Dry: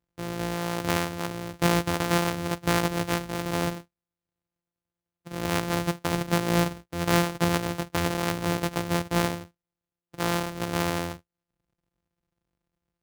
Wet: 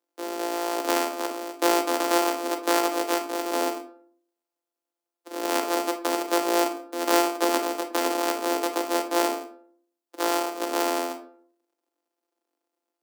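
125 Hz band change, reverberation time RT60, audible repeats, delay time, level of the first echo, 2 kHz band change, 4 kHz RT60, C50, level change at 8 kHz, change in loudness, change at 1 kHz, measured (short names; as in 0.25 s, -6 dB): under -35 dB, 0.55 s, none, none, none, -0.5 dB, 0.30 s, 9.5 dB, +3.5 dB, +1.5 dB, +4.5 dB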